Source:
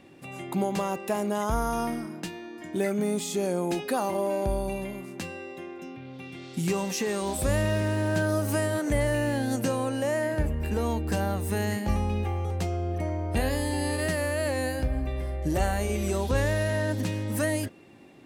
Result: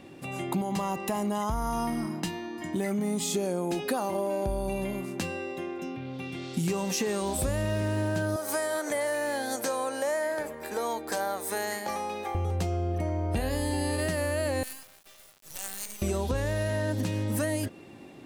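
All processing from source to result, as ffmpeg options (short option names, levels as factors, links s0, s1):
-filter_complex "[0:a]asettb=1/sr,asplit=3[s0][s1][s2];[s0]atrim=end=0.614[s3];[s1]atrim=start=0.61:end=3.23,asetpts=PTS-STARTPTS,afade=t=in:d=0.004:c=qsin,afade=t=out:st=2.616:d=0.004:c=qsin,aecho=1:1:1:0.41,atrim=end_sample=115542,acompressor=threshold=0.0355:ratio=2:attack=3.2:release=140:knee=1:detection=peak[s4];[s2]atrim=start=3.226[s5];[s3][s4]acrossfade=d=0.004:c1=hsin:c2=qsin[s6];[s6][s5]acrossfade=d=0.004:c1=qsin:c2=hsin,asettb=1/sr,asplit=3[s7][s8][s9];[s7]atrim=end=8.364[s10];[s8]atrim=start=8.36:end=12.35,asetpts=PTS-STARTPTS,afade=t=in:d=0.004:c=qsin,afade=t=out:st=3.986:d=0.004:c=qsin,highpass=560,bandreject=f=2800:w=5.5[s11];[s9]atrim=start=12.346[s12];[s10][s11]acrossfade=d=0.004:c1=hsin:c2=qsin[s13];[s13][s12]acrossfade=d=0.004:c1=qsin:c2=hsin,asettb=1/sr,asplit=3[s14][s15][s16];[s14]atrim=end=14.634[s17];[s15]atrim=start=14.63:end=16.02,asetpts=PTS-STARTPTS,afade=t=in:d=0.004:c=qsin,afade=t=out:st=1.386:d=0.004:c=qsin,highpass=390,aderivative,acrusher=bits=6:dc=4:mix=0:aa=0.000001[s18];[s16]atrim=start=16.016[s19];[s17][s18]acrossfade=d=0.004:c1=hsin:c2=qsin[s20];[s20][s19]acrossfade=d=0.004:c1=qsin:c2=hsin,equalizer=f=2000:t=o:w=0.77:g=-2.5,acompressor=threshold=0.0316:ratio=6,volume=1.68"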